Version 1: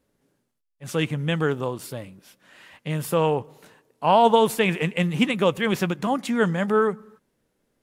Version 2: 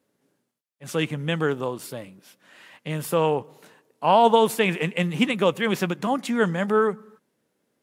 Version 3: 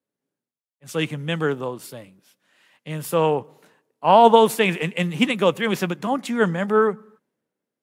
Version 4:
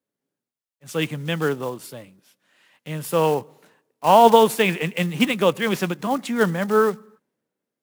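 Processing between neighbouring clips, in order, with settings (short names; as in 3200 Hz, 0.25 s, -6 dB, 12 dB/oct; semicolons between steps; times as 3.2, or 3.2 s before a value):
HPF 150 Hz 12 dB/oct
three-band expander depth 40%; gain +1.5 dB
block floating point 5-bit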